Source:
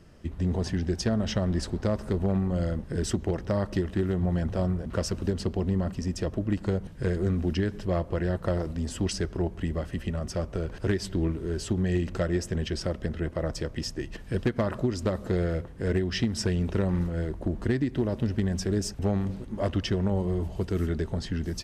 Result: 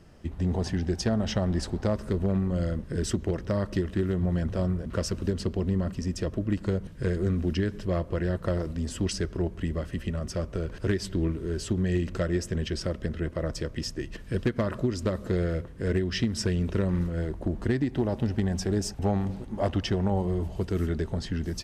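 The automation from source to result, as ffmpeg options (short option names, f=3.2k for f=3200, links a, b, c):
-af "asetnsamples=n=441:p=0,asendcmd='1.93 equalizer g -7;17.18 equalizer g 0.5;17.8 equalizer g 7.5;20.27 equalizer g 0',equalizer=f=790:t=o:w=0.35:g=4"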